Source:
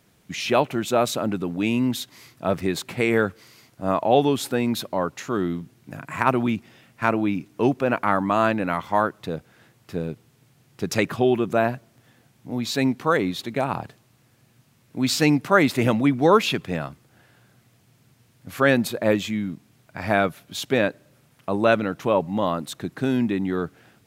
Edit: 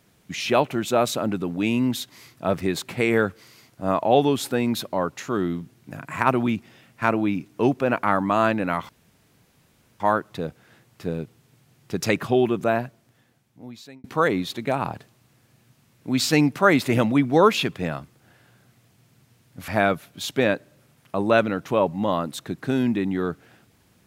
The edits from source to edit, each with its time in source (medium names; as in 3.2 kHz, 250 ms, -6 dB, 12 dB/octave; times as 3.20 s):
8.89 s: insert room tone 1.11 s
11.39–12.93 s: fade out
18.57–20.02 s: delete